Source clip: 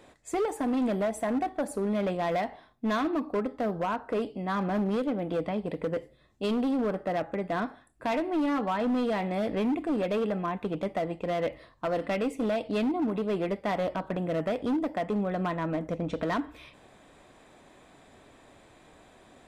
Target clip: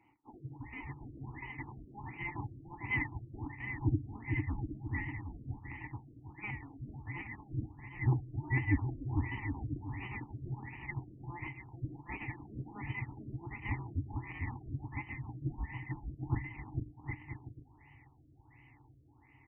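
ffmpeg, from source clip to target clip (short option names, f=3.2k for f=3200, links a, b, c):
-filter_complex "[0:a]afftfilt=real='real(if(between(b,1,1008),(2*floor((b-1)/48)+1)*48-b,b),0)':imag='imag(if(between(b,1,1008),(2*floor((b-1)/48)+1)*48-b,b),0)*if(between(b,1,1008),-1,1)':win_size=2048:overlap=0.75,bandreject=f=160.2:t=h:w=4,bandreject=f=320.4:t=h:w=4,bandreject=f=480.6:t=h:w=4,bandreject=f=640.8:t=h:w=4,bandreject=f=801:t=h:w=4,afftfilt=real='re*(1-between(b*sr/4096,150,1700))':imag='im*(1-between(b*sr/4096,150,1700))':win_size=4096:overlap=0.75,acrossover=split=1500[a][b];[a]dynaudnorm=f=190:g=7:m=14dB[c];[b]aeval=exprs='abs(val(0))':c=same[d];[c][d]amix=inputs=2:normalize=0,aexciter=amount=11.5:drive=6.6:freq=4k,asoftclip=type=tanh:threshold=-13.5dB,asplit=3[e][f][g];[e]bandpass=f=300:t=q:w=8,volume=0dB[h];[f]bandpass=f=870:t=q:w=8,volume=-6dB[i];[g]bandpass=f=2.24k:t=q:w=8,volume=-9dB[j];[h][i][j]amix=inputs=3:normalize=0,asplit=2[k][l];[l]aecho=0:1:450|765|985.5|1140|1248:0.631|0.398|0.251|0.158|0.1[m];[k][m]amix=inputs=2:normalize=0,afftfilt=real='re*lt(b*sr/1024,630*pow(3100/630,0.5+0.5*sin(2*PI*1.4*pts/sr)))':imag='im*lt(b*sr/1024,630*pow(3100/630,0.5+0.5*sin(2*PI*1.4*pts/sr)))':win_size=1024:overlap=0.75,volume=17.5dB"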